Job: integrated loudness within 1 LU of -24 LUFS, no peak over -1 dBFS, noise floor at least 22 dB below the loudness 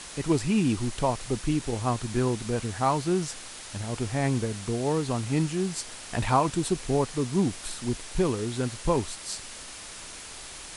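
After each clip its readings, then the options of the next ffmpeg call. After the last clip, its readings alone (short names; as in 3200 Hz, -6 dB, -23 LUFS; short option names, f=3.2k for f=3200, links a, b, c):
noise floor -42 dBFS; noise floor target -50 dBFS; loudness -28.0 LUFS; peak -10.5 dBFS; loudness target -24.0 LUFS
-> -af "afftdn=nr=8:nf=-42"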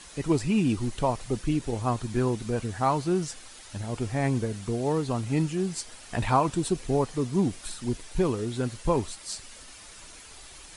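noise floor -47 dBFS; noise floor target -51 dBFS
-> -af "afftdn=nr=6:nf=-47"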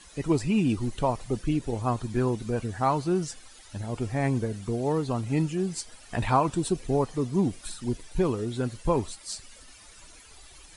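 noise floor -51 dBFS; loudness -28.5 LUFS; peak -10.5 dBFS; loudness target -24.0 LUFS
-> -af "volume=4.5dB"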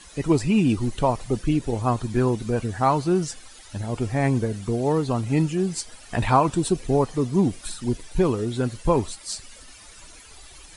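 loudness -24.0 LUFS; peak -6.0 dBFS; noise floor -46 dBFS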